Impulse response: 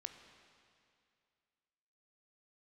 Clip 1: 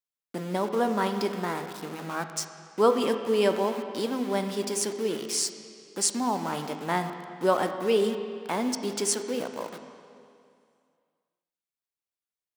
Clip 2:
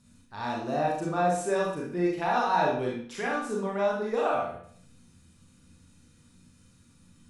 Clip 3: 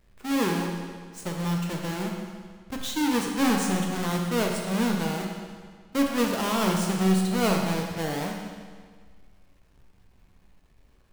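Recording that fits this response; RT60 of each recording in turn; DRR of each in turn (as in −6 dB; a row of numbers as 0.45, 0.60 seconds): 1; 2.4, 0.60, 1.7 seconds; 7.0, −3.0, 0.5 decibels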